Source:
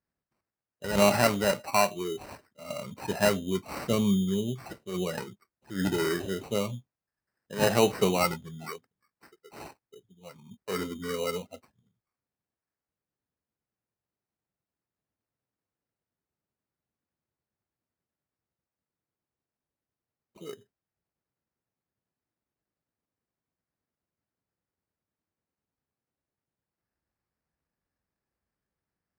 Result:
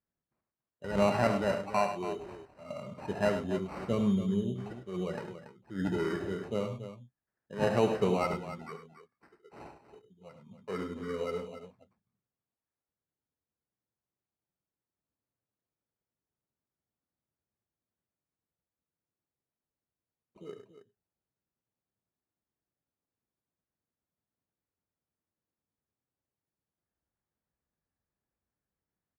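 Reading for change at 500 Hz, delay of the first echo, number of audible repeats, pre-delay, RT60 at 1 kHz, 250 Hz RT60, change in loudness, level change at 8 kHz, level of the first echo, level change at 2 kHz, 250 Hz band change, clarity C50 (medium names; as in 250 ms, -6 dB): -3.0 dB, 71 ms, 3, no reverb, no reverb, no reverb, -4.0 dB, -16.0 dB, -10.5 dB, -6.5 dB, -3.0 dB, no reverb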